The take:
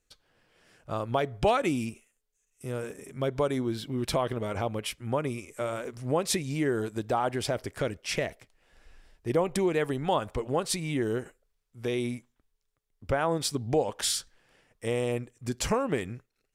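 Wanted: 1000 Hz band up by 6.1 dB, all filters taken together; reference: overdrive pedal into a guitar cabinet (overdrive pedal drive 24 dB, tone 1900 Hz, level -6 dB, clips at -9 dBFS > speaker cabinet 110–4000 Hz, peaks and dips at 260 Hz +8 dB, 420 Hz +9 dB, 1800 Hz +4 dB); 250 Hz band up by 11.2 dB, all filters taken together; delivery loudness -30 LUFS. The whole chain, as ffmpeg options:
-filter_complex "[0:a]equalizer=f=250:t=o:g=6.5,equalizer=f=1k:t=o:g=7,asplit=2[a][b];[b]highpass=f=720:p=1,volume=24dB,asoftclip=type=tanh:threshold=-9dB[c];[a][c]amix=inputs=2:normalize=0,lowpass=f=1.9k:p=1,volume=-6dB,highpass=110,equalizer=f=260:t=q:w=4:g=8,equalizer=f=420:t=q:w=4:g=9,equalizer=f=1.8k:t=q:w=4:g=4,lowpass=f=4k:w=0.5412,lowpass=f=4k:w=1.3066,volume=-13.5dB"

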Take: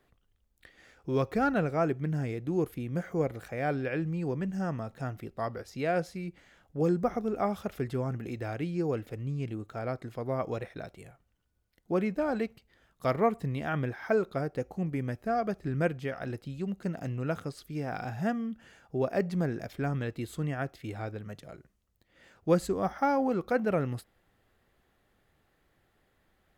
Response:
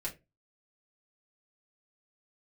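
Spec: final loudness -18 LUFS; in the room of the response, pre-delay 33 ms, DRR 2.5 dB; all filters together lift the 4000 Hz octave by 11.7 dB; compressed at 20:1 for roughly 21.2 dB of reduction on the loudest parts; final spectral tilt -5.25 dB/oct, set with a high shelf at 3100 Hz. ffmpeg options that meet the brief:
-filter_complex "[0:a]highshelf=f=3.1k:g=7.5,equalizer=f=4k:t=o:g=9,acompressor=threshold=-40dB:ratio=20,asplit=2[a][b];[1:a]atrim=start_sample=2205,adelay=33[c];[b][c]afir=irnorm=-1:irlink=0,volume=-3.5dB[d];[a][d]amix=inputs=2:normalize=0,volume=25dB"

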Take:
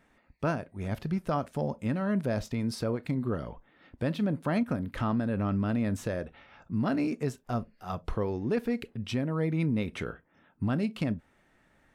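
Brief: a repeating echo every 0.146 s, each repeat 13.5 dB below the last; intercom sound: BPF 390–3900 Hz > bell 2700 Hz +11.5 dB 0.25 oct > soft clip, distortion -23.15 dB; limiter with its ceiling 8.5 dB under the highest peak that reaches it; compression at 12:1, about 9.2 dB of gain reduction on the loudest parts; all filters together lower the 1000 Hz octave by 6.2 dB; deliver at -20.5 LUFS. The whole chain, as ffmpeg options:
-af "equalizer=f=1k:t=o:g=-9,acompressor=threshold=-34dB:ratio=12,alimiter=level_in=8dB:limit=-24dB:level=0:latency=1,volume=-8dB,highpass=390,lowpass=3.9k,equalizer=f=2.7k:t=o:w=0.25:g=11.5,aecho=1:1:146|292:0.211|0.0444,asoftclip=threshold=-33dB,volume=28dB"

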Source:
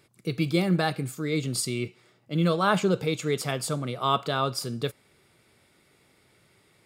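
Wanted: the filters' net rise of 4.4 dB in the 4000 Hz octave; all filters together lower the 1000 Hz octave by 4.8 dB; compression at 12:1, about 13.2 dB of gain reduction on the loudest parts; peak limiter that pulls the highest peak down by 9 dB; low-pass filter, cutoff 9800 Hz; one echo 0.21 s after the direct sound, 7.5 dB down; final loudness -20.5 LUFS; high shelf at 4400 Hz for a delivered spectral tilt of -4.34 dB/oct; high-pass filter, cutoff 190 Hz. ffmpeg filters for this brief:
-af "highpass=190,lowpass=9.8k,equalizer=f=1k:t=o:g=-6.5,equalizer=f=4k:t=o:g=9,highshelf=f=4.4k:g=-6.5,acompressor=threshold=-34dB:ratio=12,alimiter=level_in=6dB:limit=-24dB:level=0:latency=1,volume=-6dB,aecho=1:1:210:0.422,volume=20dB"

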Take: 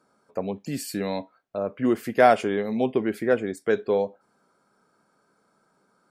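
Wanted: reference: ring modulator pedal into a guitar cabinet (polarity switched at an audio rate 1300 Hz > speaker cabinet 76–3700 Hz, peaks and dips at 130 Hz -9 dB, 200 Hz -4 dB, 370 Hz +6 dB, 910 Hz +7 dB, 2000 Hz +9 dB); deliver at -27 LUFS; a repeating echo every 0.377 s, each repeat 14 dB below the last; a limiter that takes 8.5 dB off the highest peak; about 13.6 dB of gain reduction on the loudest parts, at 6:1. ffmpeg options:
-af "acompressor=threshold=-26dB:ratio=6,alimiter=limit=-22dB:level=0:latency=1,aecho=1:1:377|754:0.2|0.0399,aeval=exprs='val(0)*sgn(sin(2*PI*1300*n/s))':c=same,highpass=76,equalizer=f=130:t=q:w=4:g=-9,equalizer=f=200:t=q:w=4:g=-4,equalizer=f=370:t=q:w=4:g=6,equalizer=f=910:t=q:w=4:g=7,equalizer=f=2k:t=q:w=4:g=9,lowpass=f=3.7k:w=0.5412,lowpass=f=3.7k:w=1.3066,volume=1.5dB"

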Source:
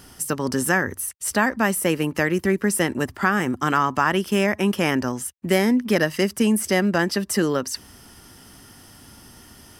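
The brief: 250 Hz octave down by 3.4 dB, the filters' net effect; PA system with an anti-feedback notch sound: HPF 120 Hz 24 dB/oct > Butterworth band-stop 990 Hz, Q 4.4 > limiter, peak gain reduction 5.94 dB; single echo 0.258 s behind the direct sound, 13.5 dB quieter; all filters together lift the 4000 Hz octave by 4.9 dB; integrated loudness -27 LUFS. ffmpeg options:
-af "highpass=f=120:w=0.5412,highpass=f=120:w=1.3066,asuperstop=centerf=990:order=8:qfactor=4.4,equalizer=f=250:t=o:g=-4.5,equalizer=f=4k:t=o:g=7.5,aecho=1:1:258:0.211,volume=-3.5dB,alimiter=limit=-15.5dB:level=0:latency=1"

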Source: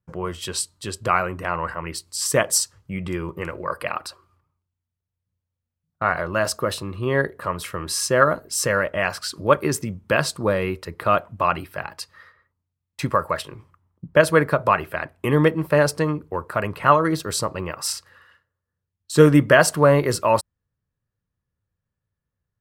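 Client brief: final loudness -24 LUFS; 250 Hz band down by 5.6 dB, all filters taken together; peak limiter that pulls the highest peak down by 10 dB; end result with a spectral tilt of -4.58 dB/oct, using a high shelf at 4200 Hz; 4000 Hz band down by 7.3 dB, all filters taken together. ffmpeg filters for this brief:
-af "equalizer=f=250:t=o:g=-8.5,equalizer=f=4k:t=o:g=-7,highshelf=f=4.2k:g=-4.5,volume=3dB,alimiter=limit=-9.5dB:level=0:latency=1"

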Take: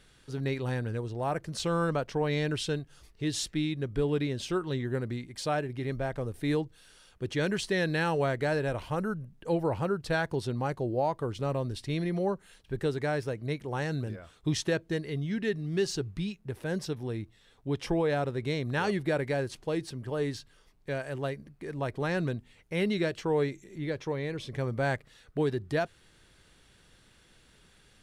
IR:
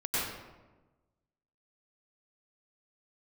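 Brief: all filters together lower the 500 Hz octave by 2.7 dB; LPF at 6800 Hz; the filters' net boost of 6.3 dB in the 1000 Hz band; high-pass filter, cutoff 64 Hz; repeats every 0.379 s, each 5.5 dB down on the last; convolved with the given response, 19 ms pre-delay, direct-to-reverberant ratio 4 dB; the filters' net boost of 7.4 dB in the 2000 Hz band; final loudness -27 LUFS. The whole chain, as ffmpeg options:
-filter_complex "[0:a]highpass=64,lowpass=6.8k,equalizer=f=500:t=o:g=-6,equalizer=f=1k:t=o:g=9,equalizer=f=2k:t=o:g=6.5,aecho=1:1:379|758|1137|1516|1895|2274|2653:0.531|0.281|0.149|0.079|0.0419|0.0222|0.0118,asplit=2[a][b];[1:a]atrim=start_sample=2205,adelay=19[c];[b][c]afir=irnorm=-1:irlink=0,volume=-12.5dB[d];[a][d]amix=inputs=2:normalize=0,volume=1dB"

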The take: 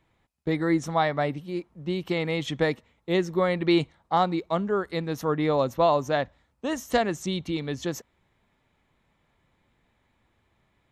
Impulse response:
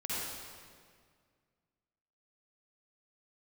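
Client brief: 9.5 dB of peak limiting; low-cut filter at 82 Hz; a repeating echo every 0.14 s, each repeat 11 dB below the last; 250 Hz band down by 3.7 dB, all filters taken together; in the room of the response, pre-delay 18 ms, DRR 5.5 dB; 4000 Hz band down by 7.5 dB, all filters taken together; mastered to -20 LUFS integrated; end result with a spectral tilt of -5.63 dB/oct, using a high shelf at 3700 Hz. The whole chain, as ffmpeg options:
-filter_complex "[0:a]highpass=82,equalizer=f=250:t=o:g=-6,highshelf=f=3.7k:g=-5.5,equalizer=f=4k:t=o:g=-6,alimiter=limit=-20.5dB:level=0:latency=1,aecho=1:1:140|280|420:0.282|0.0789|0.0221,asplit=2[a][b];[1:a]atrim=start_sample=2205,adelay=18[c];[b][c]afir=irnorm=-1:irlink=0,volume=-10dB[d];[a][d]amix=inputs=2:normalize=0,volume=10.5dB"

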